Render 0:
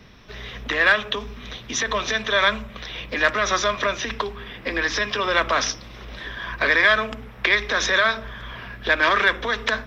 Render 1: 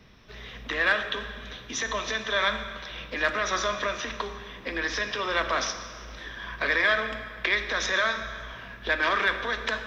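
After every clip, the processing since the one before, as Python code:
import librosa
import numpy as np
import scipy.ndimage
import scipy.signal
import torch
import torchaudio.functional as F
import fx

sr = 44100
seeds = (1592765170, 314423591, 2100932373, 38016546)

y = fx.rev_plate(x, sr, seeds[0], rt60_s=1.9, hf_ratio=0.9, predelay_ms=0, drr_db=7.5)
y = F.gain(torch.from_numpy(y), -6.5).numpy()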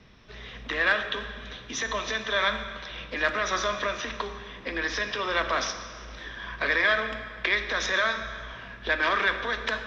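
y = scipy.signal.sosfilt(scipy.signal.butter(2, 7100.0, 'lowpass', fs=sr, output='sos'), x)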